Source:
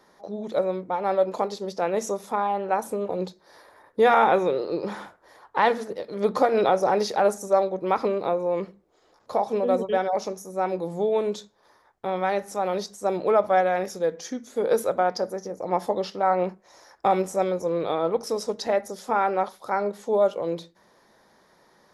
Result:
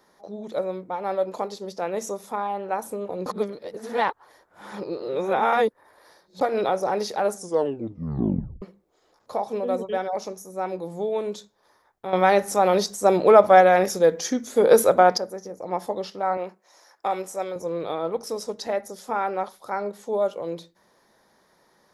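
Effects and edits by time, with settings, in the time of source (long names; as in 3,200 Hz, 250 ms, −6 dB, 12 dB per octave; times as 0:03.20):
0:03.26–0:06.41: reverse
0:07.34: tape stop 1.28 s
0:12.13–0:15.18: clip gain +10 dB
0:16.37–0:17.56: high-pass filter 490 Hz 6 dB per octave
whole clip: high-shelf EQ 9,000 Hz +7 dB; level −3 dB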